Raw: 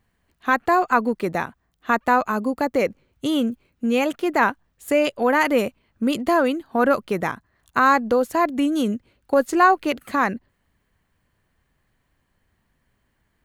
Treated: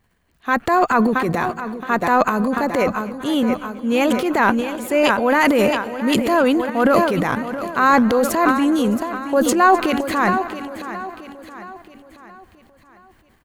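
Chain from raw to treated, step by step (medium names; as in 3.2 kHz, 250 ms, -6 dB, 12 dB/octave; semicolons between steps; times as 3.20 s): feedback delay 673 ms, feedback 46%, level -12.5 dB; transient shaper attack -4 dB, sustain +11 dB; modulated delay 255 ms, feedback 54%, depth 61 cents, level -19 dB; trim +2.5 dB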